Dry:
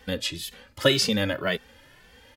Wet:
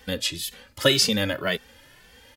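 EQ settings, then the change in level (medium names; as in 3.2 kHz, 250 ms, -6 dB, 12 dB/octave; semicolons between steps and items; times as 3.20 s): treble shelf 4.1 kHz +6.5 dB; 0.0 dB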